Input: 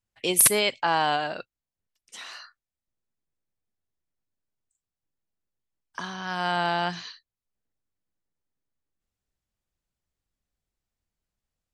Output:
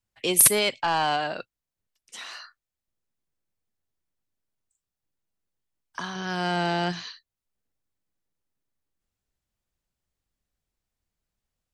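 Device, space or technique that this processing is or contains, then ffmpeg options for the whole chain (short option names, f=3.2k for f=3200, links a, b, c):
one-band saturation: -filter_complex "[0:a]asettb=1/sr,asplit=3[a][b][c];[a]atrim=end=6.154[d];[b]atrim=start=6.15:end=6.92,asetpts=PTS-STARTPTS,afade=t=in:d=0.004:c=qsin,afade=t=out:st=0.766:d=0.004:c=qsin,equalizer=f=160:t=o:w=0.67:g=4,equalizer=f=400:t=o:w=0.67:g=8,equalizer=f=1k:t=o:w=0.67:g=-5,equalizer=f=6.3k:t=o:w=0.67:g=4[e];[c]atrim=start=6.916[f];[d][e]acrossfade=d=0.004:c1=hsin:c2=qsin[g];[g][f]acrossfade=d=0.004:c1=qsin:c2=hsin,acrossover=split=270|4400[h][i][j];[i]asoftclip=type=tanh:threshold=-19dB[k];[h][k][j]amix=inputs=3:normalize=0,volume=1.5dB"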